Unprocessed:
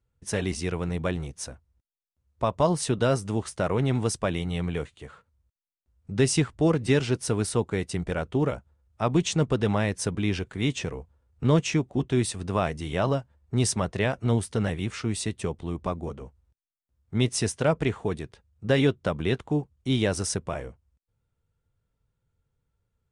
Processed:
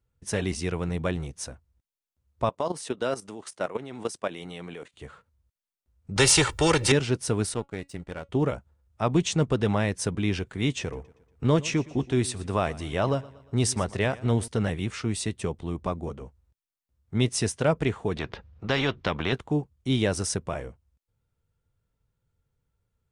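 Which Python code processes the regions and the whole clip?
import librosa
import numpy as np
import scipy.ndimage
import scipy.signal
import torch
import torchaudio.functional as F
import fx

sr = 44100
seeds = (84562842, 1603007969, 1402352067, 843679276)

y = fx.chain(x, sr, fx.highpass(hz=270.0, slope=12),
    fx.level_steps(step_db=13), at=(2.49, 4.94))
y = fx.chain(y, sr, fx.comb(ms=2.2, depth=0.88),
    fx.spectral_comp(ratio=2.0), at=(6.16, 6.92))
y = fx.chain(y, sr, fx.power_curve(exponent=1.4),
    fx.comb_fb(f0_hz=280.0, decay_s=0.16, harmonics='all', damping=0.0, mix_pct=40), at=(7.54, 8.29))
y = fx.chain(y, sr, fx.peak_eq(hz=170.0, db=-3.5, octaves=0.43),
    fx.echo_feedback(ms=118, feedback_pct=49, wet_db=-20.5), at=(10.81, 14.48))
y = fx.chain(y, sr, fx.air_absorb(metres=220.0),
    fx.spectral_comp(ratio=2.0), at=(18.16, 19.33))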